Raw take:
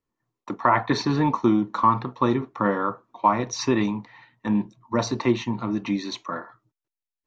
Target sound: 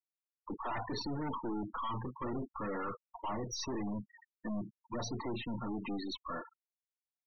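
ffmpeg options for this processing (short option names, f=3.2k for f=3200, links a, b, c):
-af "aeval=exprs='(tanh(50.1*val(0)+0.4)-tanh(0.4))/50.1':c=same,afftfilt=real='re*gte(hypot(re,im),0.0224)':imag='im*gte(hypot(re,im),0.0224)':win_size=1024:overlap=0.75,volume=-1.5dB"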